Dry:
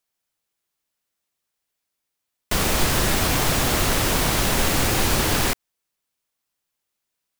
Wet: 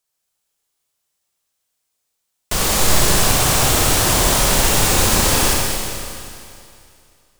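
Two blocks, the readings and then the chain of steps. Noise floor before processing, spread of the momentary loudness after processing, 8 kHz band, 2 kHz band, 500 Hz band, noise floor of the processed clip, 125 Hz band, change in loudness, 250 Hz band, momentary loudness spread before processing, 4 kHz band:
−81 dBFS, 11 LU, +9.0 dB, +3.5 dB, +4.5 dB, −74 dBFS, +4.0 dB, +5.5 dB, +2.5 dB, 3 LU, +6.0 dB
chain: graphic EQ with 10 bands 250 Hz −5 dB, 2,000 Hz −3 dB, 8,000 Hz +4 dB
four-comb reverb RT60 2.5 s, combs from 30 ms, DRR −2 dB
level +1.5 dB

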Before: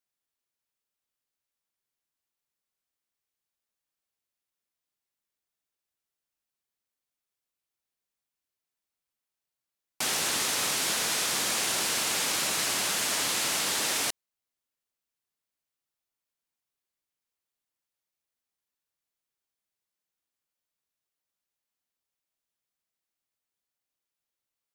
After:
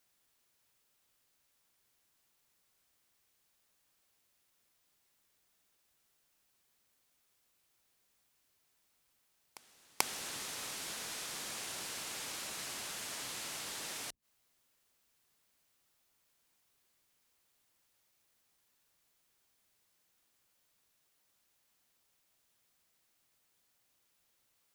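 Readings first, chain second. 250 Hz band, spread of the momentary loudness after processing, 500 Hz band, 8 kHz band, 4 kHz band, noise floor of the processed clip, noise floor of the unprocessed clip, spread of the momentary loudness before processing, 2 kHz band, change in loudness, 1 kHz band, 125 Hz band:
−13.5 dB, 12 LU, −13.5 dB, −14.0 dB, −14.0 dB, −76 dBFS, below −85 dBFS, 2 LU, −13.5 dB, −14.0 dB, −12.0 dB, −12.0 dB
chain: sub-octave generator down 1 octave, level −6 dB
gate with flip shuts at −22 dBFS, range −27 dB
backwards echo 437 ms −22.5 dB
level +12.5 dB

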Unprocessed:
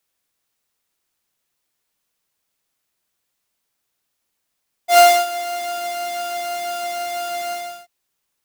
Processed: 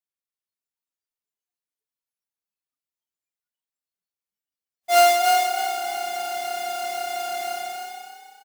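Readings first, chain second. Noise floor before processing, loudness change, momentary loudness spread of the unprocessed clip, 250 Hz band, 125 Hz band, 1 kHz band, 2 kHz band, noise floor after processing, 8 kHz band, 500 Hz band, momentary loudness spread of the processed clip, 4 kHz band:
−76 dBFS, −3.0 dB, 15 LU, −4.0 dB, can't be measured, −2.0 dB, −2.5 dB, below −85 dBFS, −3.0 dB, −4.0 dB, 16 LU, −2.5 dB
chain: echo with shifted repeats 304 ms, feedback 35%, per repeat +32 Hz, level −4 dB
noise reduction from a noise print of the clip's start 18 dB
level −4.5 dB

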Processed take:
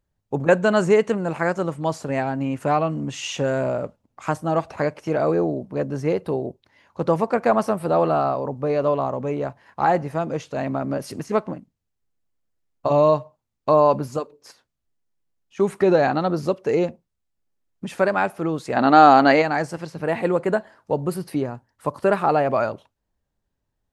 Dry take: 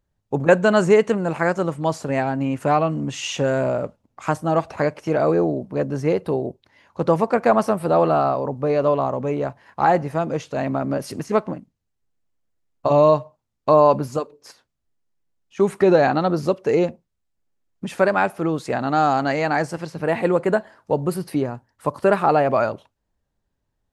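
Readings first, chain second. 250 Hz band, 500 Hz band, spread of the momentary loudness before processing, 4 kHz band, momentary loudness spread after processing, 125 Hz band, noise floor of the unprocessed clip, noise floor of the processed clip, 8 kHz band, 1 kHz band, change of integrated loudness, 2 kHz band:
−1.0 dB, −1.5 dB, 11 LU, 0.0 dB, 12 LU, −2.0 dB, −76 dBFS, −78 dBFS, can't be measured, +0.5 dB, −1.0 dB, −0.5 dB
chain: gain on a spectral selection 0:18.77–0:19.42, 210–4,800 Hz +9 dB
level −2 dB

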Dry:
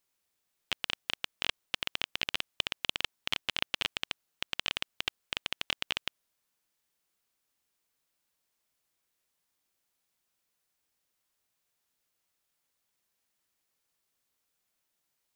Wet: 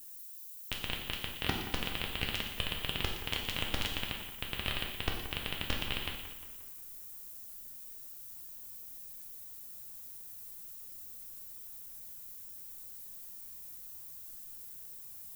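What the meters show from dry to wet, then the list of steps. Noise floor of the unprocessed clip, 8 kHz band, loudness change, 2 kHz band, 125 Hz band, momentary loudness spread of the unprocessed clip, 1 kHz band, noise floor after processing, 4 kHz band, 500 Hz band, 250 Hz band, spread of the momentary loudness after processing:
−81 dBFS, +2.5 dB, −4.5 dB, −2.5 dB, +13.0 dB, 5 LU, +1.0 dB, −48 dBFS, −3.0 dB, +3.5 dB, +8.5 dB, 10 LU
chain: sub-harmonics by changed cycles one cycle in 2, inverted
hard clipping −15.5 dBFS, distortion −13 dB
reversed playback
upward compression, threshold −54 dBFS
reversed playback
spectral tilt −4 dB per octave
background noise violet −59 dBFS
high-shelf EQ 6,200 Hz +8.5 dB
on a send: echo with a time of its own for lows and highs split 2,100 Hz, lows 177 ms, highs 117 ms, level −11.5 dB
on the sum: reverb whose tail is shaped and stops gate 270 ms falling, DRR 0 dB

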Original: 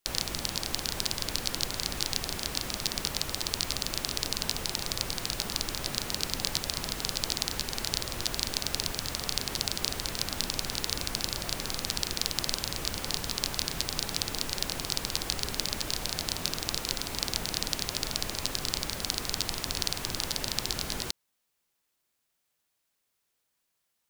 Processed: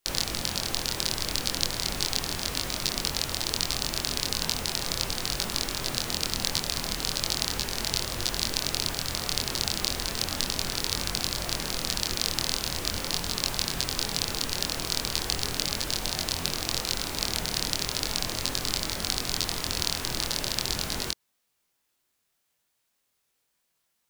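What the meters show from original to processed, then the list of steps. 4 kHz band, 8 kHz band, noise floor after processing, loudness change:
+3.0 dB, +3.0 dB, −76 dBFS, +3.0 dB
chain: chorus effect 0.37 Hz, depth 2.4 ms
level +6 dB

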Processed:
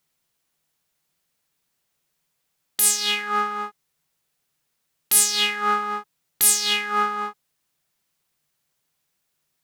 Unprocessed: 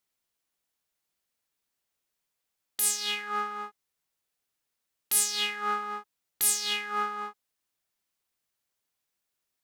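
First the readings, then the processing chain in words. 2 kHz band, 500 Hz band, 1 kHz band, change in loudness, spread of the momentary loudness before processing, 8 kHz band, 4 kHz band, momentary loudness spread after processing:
+8.0 dB, +8.0 dB, +8.0 dB, +8.0 dB, 15 LU, +8.0 dB, +8.0 dB, 15 LU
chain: parametric band 150 Hz +10.5 dB 0.44 octaves
level +8 dB

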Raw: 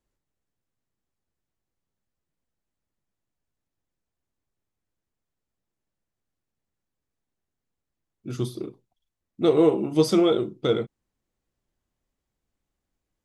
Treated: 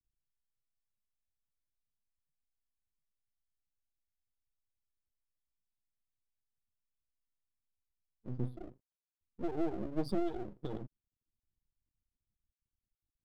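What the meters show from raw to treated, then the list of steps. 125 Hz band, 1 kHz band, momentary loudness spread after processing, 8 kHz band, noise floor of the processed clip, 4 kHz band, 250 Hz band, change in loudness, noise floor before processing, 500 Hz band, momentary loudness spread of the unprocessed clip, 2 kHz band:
−11.0 dB, −12.5 dB, 17 LU, below −25 dB, below −85 dBFS, −23.5 dB, −14.5 dB, −16.5 dB, −85 dBFS, −19.0 dB, 18 LU, −16.0 dB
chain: expanding power law on the bin magnitudes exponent 1.9
parametric band 2,100 Hz −12.5 dB 2.4 octaves
phaser with its sweep stopped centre 1,900 Hz, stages 6
half-wave rectification
level −2 dB

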